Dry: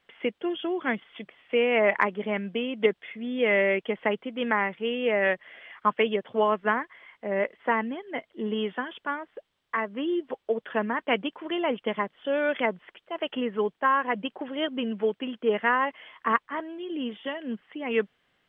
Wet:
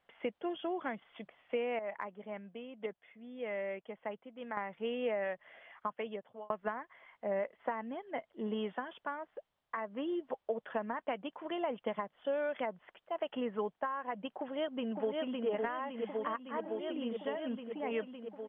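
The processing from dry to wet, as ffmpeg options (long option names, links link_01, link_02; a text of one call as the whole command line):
ffmpeg -i in.wav -filter_complex "[0:a]asplit=2[link_01][link_02];[link_02]afade=type=in:start_time=14.39:duration=0.01,afade=type=out:start_time=15.48:duration=0.01,aecho=0:1:560|1120|1680|2240|2800|3360|3920|4480|5040|5600|6160|6720:0.707946|0.566357|0.453085|0.362468|0.289975|0.23198|0.185584|0.148467|0.118774|0.0950189|0.0760151|0.0608121[link_03];[link_01][link_03]amix=inputs=2:normalize=0,asplit=4[link_04][link_05][link_06][link_07];[link_04]atrim=end=1.792[link_08];[link_05]atrim=start=1.788:end=4.572,asetpts=PTS-STARTPTS,volume=-10dB[link_09];[link_06]atrim=start=4.568:end=6.5,asetpts=PTS-STARTPTS,afade=type=out:start_time=0.662:duration=1.27:curve=qsin[link_10];[link_07]atrim=start=6.5,asetpts=PTS-STARTPTS,afade=type=in:duration=0.004:curve=hsin[link_11];[link_08][link_09]acrossfade=duration=0.004:curve1=hsin:curve2=hsin[link_12];[link_10][link_11]concat=n=2:v=0:a=1[link_13];[link_12][link_13]acrossfade=duration=0.004:curve1=hsin:curve2=hsin,lowshelf=frequency=510:width_type=q:width=1.5:gain=-7.5,acompressor=threshold=-28dB:ratio=12,tiltshelf=frequency=970:gain=7.5,volume=-5dB" out.wav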